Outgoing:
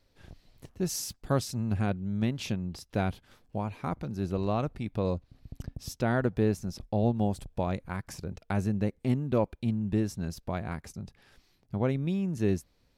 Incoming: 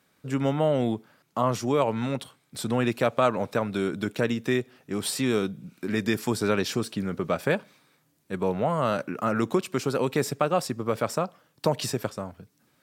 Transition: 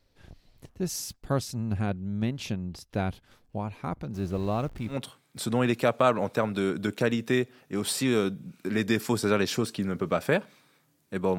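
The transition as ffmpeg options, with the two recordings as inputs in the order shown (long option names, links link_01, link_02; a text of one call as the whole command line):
ffmpeg -i cue0.wav -i cue1.wav -filter_complex "[0:a]asettb=1/sr,asplit=3[link_01][link_02][link_03];[link_01]atrim=end=4.144[link_04];[link_02]atrim=start=4.14:end=4.99,asetpts=PTS-STARTPTS,afade=type=in:duration=0.004:curve=qsin,afade=type=out:start_time=0.846:duration=0.004:curve=qsin,aeval=exprs='val(0)+0.5*0.00708*sgn(val(0))':channel_layout=same[link_05];[link_03]atrim=start=4.986[link_06];[link_04][link_05]acrossfade=duration=0.004:curve1=hsin:curve2=qsin[link_07];[link_07][link_06]acrossfade=duration=0.004:curve1=qsin:curve2=hsin,apad=whole_dur=11.38,atrim=end=11.38,atrim=end=4.99,asetpts=PTS-STARTPTS[link_08];[1:a]atrim=start=2.05:end=8.56,asetpts=PTS-STARTPTS[link_09];[link_08][link_09]acrossfade=duration=0.12:curve1=tri:curve2=tri" out.wav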